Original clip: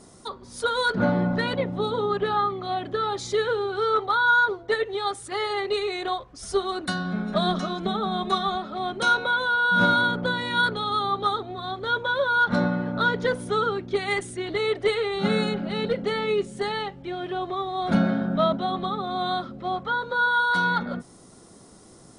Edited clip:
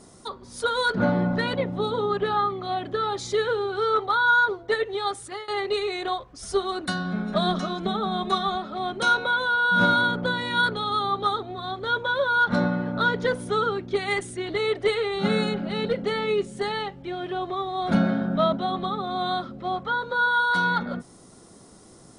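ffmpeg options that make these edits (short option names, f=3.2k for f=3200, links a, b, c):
-filter_complex "[0:a]asplit=2[a][b];[a]atrim=end=5.48,asetpts=PTS-STARTPTS,afade=t=out:st=5.23:d=0.25:silence=0.0668344[c];[b]atrim=start=5.48,asetpts=PTS-STARTPTS,afade=t=in:d=0.004:c=hsin:silence=0.0668344[d];[c][d]concat=n=2:v=0:a=1"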